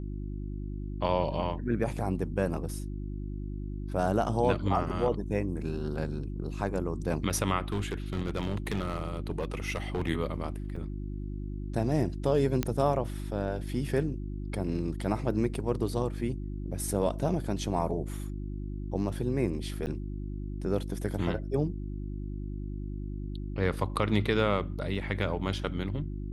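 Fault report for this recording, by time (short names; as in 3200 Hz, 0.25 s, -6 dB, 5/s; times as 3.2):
hum 50 Hz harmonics 7 -36 dBFS
7.72–10.09 clipped -25.5 dBFS
10.76 gap 4.4 ms
12.63 pop -13 dBFS
19.86–19.87 gap 8.8 ms
24.95–24.96 gap 5.6 ms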